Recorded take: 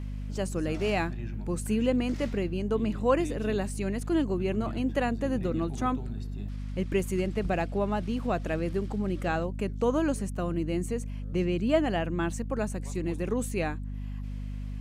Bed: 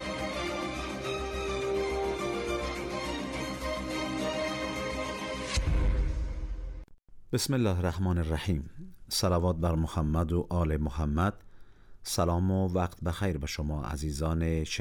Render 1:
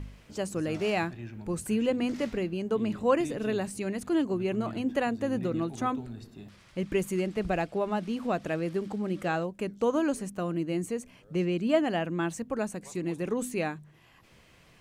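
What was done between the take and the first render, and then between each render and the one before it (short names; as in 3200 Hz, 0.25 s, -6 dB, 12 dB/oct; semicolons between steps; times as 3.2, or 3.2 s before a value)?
de-hum 50 Hz, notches 5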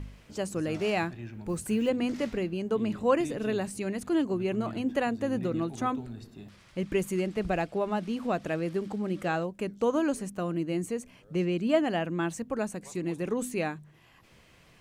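1.47–1.91 block floating point 7-bit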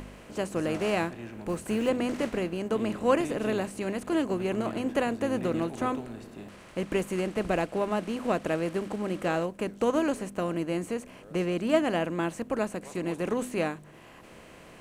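per-bin compression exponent 0.6; upward expander 1.5:1, over -34 dBFS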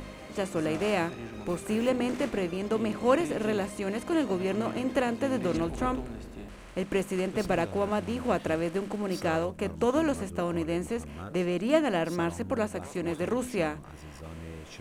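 add bed -13.5 dB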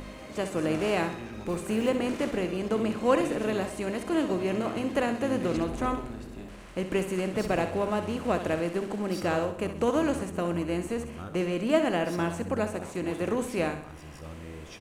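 feedback echo 64 ms, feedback 48%, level -9.5 dB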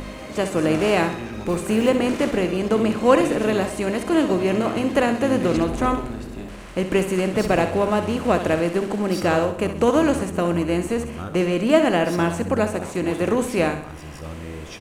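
gain +8 dB; limiter -3 dBFS, peak gain reduction 0.5 dB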